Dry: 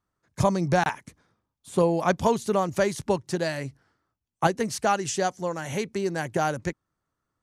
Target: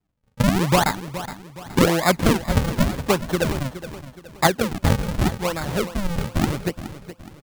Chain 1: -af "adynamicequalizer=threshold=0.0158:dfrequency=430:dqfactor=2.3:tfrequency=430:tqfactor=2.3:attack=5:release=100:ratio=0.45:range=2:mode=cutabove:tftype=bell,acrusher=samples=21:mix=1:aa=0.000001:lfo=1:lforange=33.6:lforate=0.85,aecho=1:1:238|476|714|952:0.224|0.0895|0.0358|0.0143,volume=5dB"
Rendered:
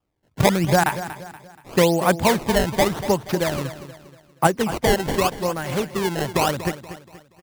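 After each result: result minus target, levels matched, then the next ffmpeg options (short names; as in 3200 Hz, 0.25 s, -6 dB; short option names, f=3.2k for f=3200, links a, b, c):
echo 0.181 s early; decimation with a swept rate: distortion -11 dB
-af "adynamicequalizer=threshold=0.0158:dfrequency=430:dqfactor=2.3:tfrequency=430:tqfactor=2.3:attack=5:release=100:ratio=0.45:range=2:mode=cutabove:tftype=bell,acrusher=samples=21:mix=1:aa=0.000001:lfo=1:lforange=33.6:lforate=0.85,aecho=1:1:419|838|1257|1676:0.224|0.0895|0.0358|0.0143,volume=5dB"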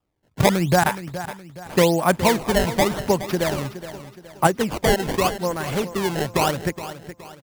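decimation with a swept rate: distortion -11 dB
-af "adynamicequalizer=threshold=0.0158:dfrequency=430:dqfactor=2.3:tfrequency=430:tqfactor=2.3:attack=5:release=100:ratio=0.45:range=2:mode=cutabove:tftype=bell,acrusher=samples=73:mix=1:aa=0.000001:lfo=1:lforange=117:lforate=0.85,aecho=1:1:419|838|1257|1676:0.224|0.0895|0.0358|0.0143,volume=5dB"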